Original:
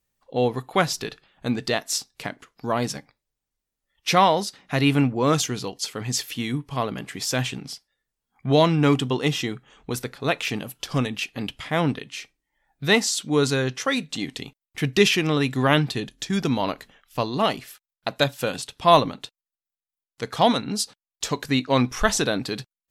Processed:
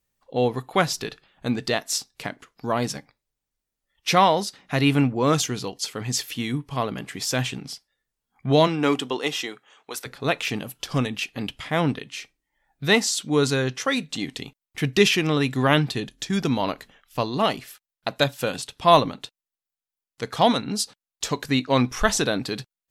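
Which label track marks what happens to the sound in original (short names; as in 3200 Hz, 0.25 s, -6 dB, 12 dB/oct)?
8.660000	10.050000	HPF 240 Hz -> 680 Hz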